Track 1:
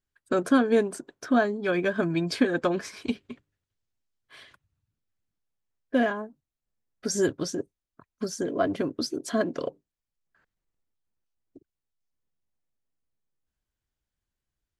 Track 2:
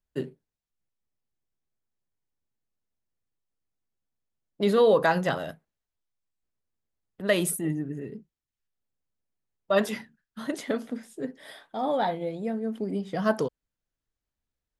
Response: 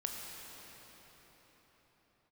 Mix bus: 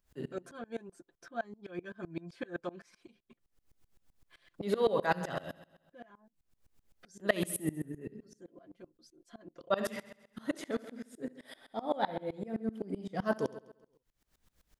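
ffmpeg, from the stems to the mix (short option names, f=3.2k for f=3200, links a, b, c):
-filter_complex "[0:a]aecho=1:1:5.8:0.71,volume=-0.5dB,afade=t=out:st=2.79:d=0.61:silence=0.334965,afade=t=in:st=9.35:d=0.79:silence=0.237137[a];[1:a]volume=-0.5dB,asplit=2[b][c];[c]volume=-10.5dB,aecho=0:1:68|136|204|272|340|408|476|544:1|0.55|0.303|0.166|0.0915|0.0503|0.0277|0.0152[d];[a][b][d]amix=inputs=3:normalize=0,acompressor=mode=upward:threshold=-43dB:ratio=2.5,aeval=exprs='val(0)*pow(10,-24*if(lt(mod(-7.8*n/s,1),2*abs(-7.8)/1000),1-mod(-7.8*n/s,1)/(2*abs(-7.8)/1000),(mod(-7.8*n/s,1)-2*abs(-7.8)/1000)/(1-2*abs(-7.8)/1000))/20)':c=same"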